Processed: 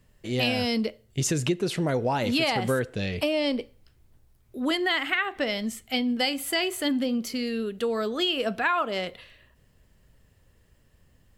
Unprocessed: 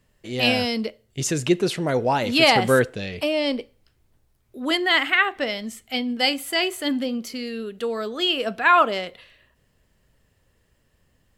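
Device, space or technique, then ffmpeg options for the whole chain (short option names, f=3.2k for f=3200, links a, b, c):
ASMR close-microphone chain: -af "lowshelf=f=200:g=5.5,acompressor=threshold=-22dB:ratio=6,highshelf=f=12k:g=3"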